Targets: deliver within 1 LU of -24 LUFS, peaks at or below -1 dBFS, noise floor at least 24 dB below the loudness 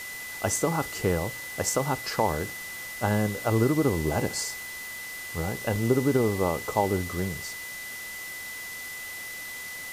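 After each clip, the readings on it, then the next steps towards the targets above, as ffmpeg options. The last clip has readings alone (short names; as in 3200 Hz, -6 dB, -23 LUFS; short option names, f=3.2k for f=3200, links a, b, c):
steady tone 2000 Hz; tone level -37 dBFS; noise floor -38 dBFS; noise floor target -53 dBFS; loudness -28.5 LUFS; peak -10.0 dBFS; loudness target -24.0 LUFS
-> -af "bandreject=f=2k:w=30"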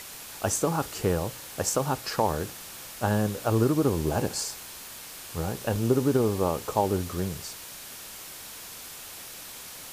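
steady tone none; noise floor -43 dBFS; noise floor target -52 dBFS
-> -af "afftdn=nr=9:nf=-43"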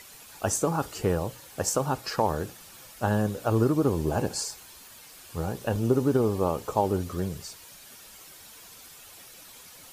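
noise floor -49 dBFS; noise floor target -52 dBFS
-> -af "afftdn=nr=6:nf=-49"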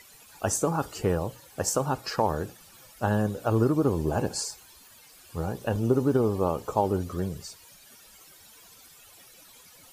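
noise floor -53 dBFS; loudness -27.5 LUFS; peak -10.0 dBFS; loudness target -24.0 LUFS
-> -af "volume=3.5dB"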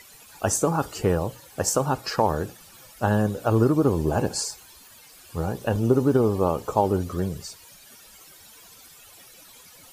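loudness -24.0 LUFS; peak -6.5 dBFS; noise floor -50 dBFS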